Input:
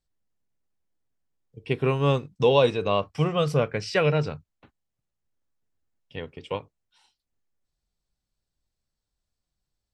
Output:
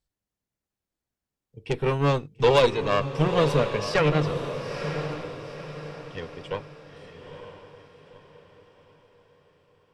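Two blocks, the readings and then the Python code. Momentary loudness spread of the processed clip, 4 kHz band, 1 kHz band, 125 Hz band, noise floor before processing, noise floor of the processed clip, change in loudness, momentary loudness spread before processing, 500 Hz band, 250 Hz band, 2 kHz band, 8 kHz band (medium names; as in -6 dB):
17 LU, +1.0 dB, +2.5 dB, +0.5 dB, -84 dBFS, under -85 dBFS, 0.0 dB, 18 LU, +0.5 dB, +1.0 dB, +2.5 dB, +3.5 dB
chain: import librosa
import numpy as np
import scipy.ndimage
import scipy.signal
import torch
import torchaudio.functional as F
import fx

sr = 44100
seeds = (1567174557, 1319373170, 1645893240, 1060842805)

y = fx.cheby_harmonics(x, sr, harmonics=(6,), levels_db=(-16,), full_scale_db=-6.0)
y = fx.echo_diffused(y, sr, ms=933, feedback_pct=42, wet_db=-8)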